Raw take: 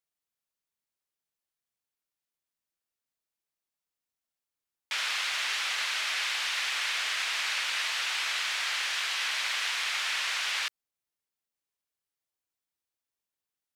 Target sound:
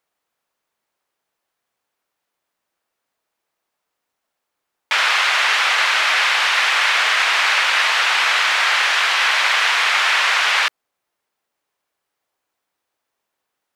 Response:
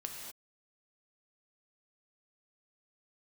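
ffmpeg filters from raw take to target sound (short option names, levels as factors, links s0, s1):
-af "equalizer=f=780:w=0.31:g=13.5,volume=2.11"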